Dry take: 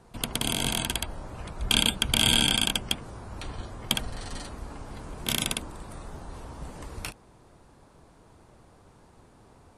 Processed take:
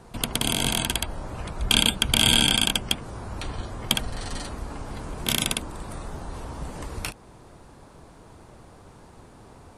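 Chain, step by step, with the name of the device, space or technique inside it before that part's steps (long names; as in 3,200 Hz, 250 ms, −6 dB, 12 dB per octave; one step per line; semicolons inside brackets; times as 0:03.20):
parallel compression (in parallel at −3.5 dB: downward compressor, threshold −41 dBFS, peak gain reduction 22 dB)
on the sum: level +2.5 dB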